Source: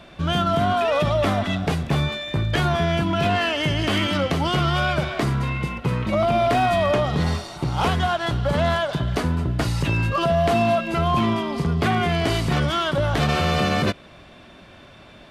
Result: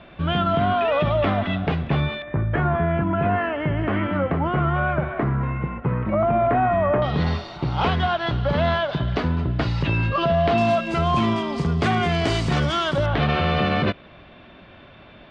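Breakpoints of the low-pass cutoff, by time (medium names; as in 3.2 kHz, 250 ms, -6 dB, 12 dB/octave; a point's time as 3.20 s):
low-pass 24 dB/octave
3.3 kHz
from 2.22 s 1.9 kHz
from 7.02 s 4.3 kHz
from 10.58 s 8.1 kHz
from 13.06 s 3.6 kHz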